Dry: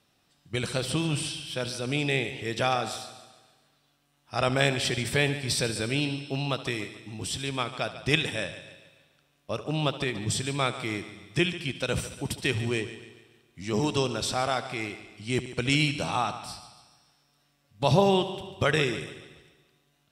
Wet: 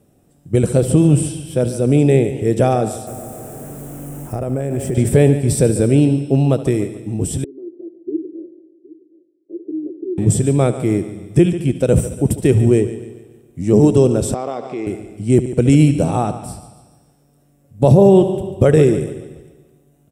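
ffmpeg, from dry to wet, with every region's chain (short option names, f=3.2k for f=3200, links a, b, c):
-filter_complex "[0:a]asettb=1/sr,asplit=3[a][b][c];[a]atrim=end=3.074[d];[b]atrim=start=3.07:end=4.95,asetpts=PTS-STARTPTS,afade=t=in:d=0.004:c=qsin,afade=t=out:st=1.876:d=0.004:c=qsin,aeval=exprs='val(0)+0.5*0.0133*sgn(val(0))':c=same,equalizer=f=3.9k:t=o:w=0.94:g=-11,acompressor=threshold=-31dB:ratio=16:attack=3.2:release=140:knee=1:detection=peak[e];[c]atrim=start=4.946[f];[d][e]acrossfade=d=0.004:c1=hsin:c2=qsin[g];[g][f]acrossfade=d=0.004:c1=qsin:c2=hsin,asettb=1/sr,asplit=3[h][i][j];[h]atrim=end=7.444[k];[i]atrim=start=7.44:end=10.18,asetpts=PTS-STARTPTS,afade=t=in:d=0.004:c=qsin,afade=t=out:st=2.736:d=0.004:c=qsin,asuperpass=centerf=340:order=4:qfactor=7.1,aecho=1:1:766:0.112,atrim=end_sample=120834[l];[j]atrim=start=10.176[m];[k][l]acrossfade=d=0.004:c1=hsin:c2=qsin[n];[n][m]acrossfade=d=0.004:c1=qsin:c2=hsin,asettb=1/sr,asplit=3[o][p][q];[o]atrim=end=14.344[r];[p]atrim=start=14.34:end=14.87,asetpts=PTS-STARTPTS,afade=t=in:d=0.004:c=qsin,afade=t=out:st=0.526:d=0.004:c=qsin,acompressor=threshold=-31dB:ratio=2:attack=3.2:release=140:knee=1:detection=peak,acrusher=bits=9:mode=log:mix=0:aa=0.000001,highpass=290,equalizer=f=640:t=q:w=4:g=-4,equalizer=f=1.1k:t=q:w=4:g=8,equalizer=f=1.5k:t=q:w=4:g=-9,lowpass=f=5.8k:w=0.5412,lowpass=f=5.8k:w=1.3066[s];[q]atrim=start=14.866[t];[r][s]acrossfade=d=0.004:c1=hsin:c2=qsin[u];[u][t]acrossfade=d=0.004:c1=qsin:c2=hsin,firequalizer=gain_entry='entry(480,0);entry(1000,-16);entry(4300,-26);entry(7800,-7)':delay=0.05:min_phase=1,alimiter=level_in=18dB:limit=-1dB:release=50:level=0:latency=1,volume=-1dB"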